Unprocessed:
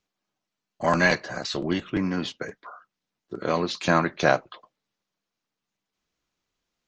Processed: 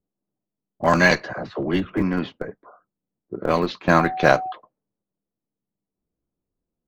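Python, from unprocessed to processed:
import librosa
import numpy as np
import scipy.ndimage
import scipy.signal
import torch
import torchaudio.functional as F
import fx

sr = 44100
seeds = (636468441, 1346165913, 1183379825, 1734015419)

p1 = fx.dispersion(x, sr, late='lows', ms=51.0, hz=350.0, at=(1.33, 2.02))
p2 = fx.dmg_tone(p1, sr, hz=750.0, level_db=-30.0, at=(3.95, 4.51), fade=0.02)
p3 = fx.env_lowpass(p2, sr, base_hz=430.0, full_db=-17.0)
p4 = fx.schmitt(p3, sr, flips_db=-19.0)
p5 = p3 + (p4 * librosa.db_to_amplitude(-12.0))
y = p5 * librosa.db_to_amplitude(4.0)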